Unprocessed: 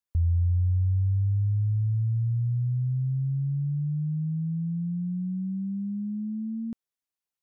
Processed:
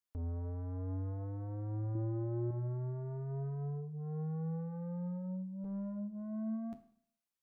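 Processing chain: 5.64–6.22 s: comb filter that takes the minimum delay 4.8 ms; flange 0.34 Hz, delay 6.4 ms, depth 5.6 ms, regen -56%; saturation -39 dBFS, distortion -7 dB; 1.95–2.51 s: peaking EQ 270 Hz +11.5 dB 1.3 oct; Schroeder reverb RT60 0.6 s, combs from 25 ms, DRR 10 dB; trim +1 dB

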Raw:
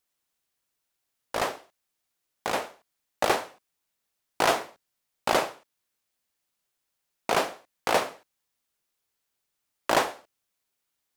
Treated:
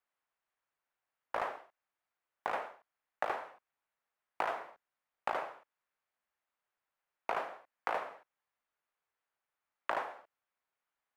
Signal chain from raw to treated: three-band isolator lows -13 dB, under 570 Hz, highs -21 dB, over 2.2 kHz; compression 10:1, threshold -32 dBFS, peak gain reduction 12.5 dB; trim +1 dB

